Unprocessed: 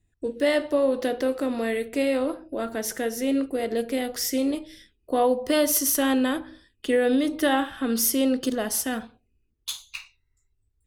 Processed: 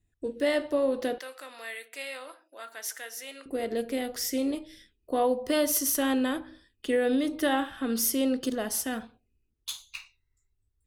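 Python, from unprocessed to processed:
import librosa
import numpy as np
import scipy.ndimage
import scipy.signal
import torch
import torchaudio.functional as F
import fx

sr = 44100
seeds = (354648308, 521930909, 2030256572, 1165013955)

y = fx.highpass(x, sr, hz=1200.0, slope=12, at=(1.18, 3.46))
y = F.gain(torch.from_numpy(y), -4.0).numpy()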